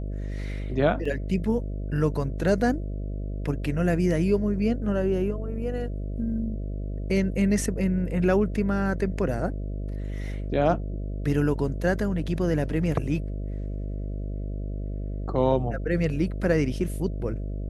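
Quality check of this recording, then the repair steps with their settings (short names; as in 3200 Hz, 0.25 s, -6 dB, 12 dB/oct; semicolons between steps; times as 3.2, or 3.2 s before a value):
buzz 50 Hz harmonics 13 -31 dBFS
1.05 gap 4.4 ms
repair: de-hum 50 Hz, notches 13; interpolate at 1.05, 4.4 ms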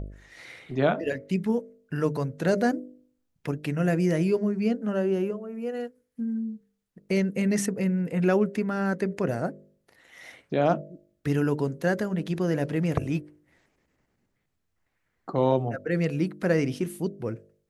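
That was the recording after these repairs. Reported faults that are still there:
none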